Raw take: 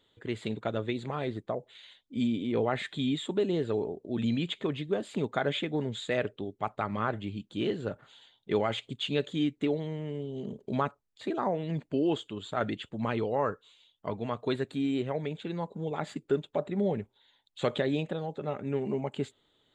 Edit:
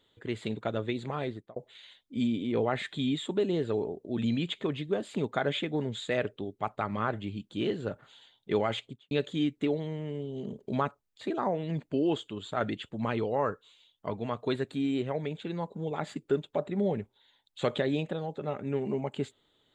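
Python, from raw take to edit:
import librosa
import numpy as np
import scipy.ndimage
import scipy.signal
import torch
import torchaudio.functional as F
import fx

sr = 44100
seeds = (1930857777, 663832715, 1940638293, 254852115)

y = fx.studio_fade_out(x, sr, start_s=8.76, length_s=0.35)
y = fx.edit(y, sr, fx.fade_out_span(start_s=1.23, length_s=0.33), tone=tone)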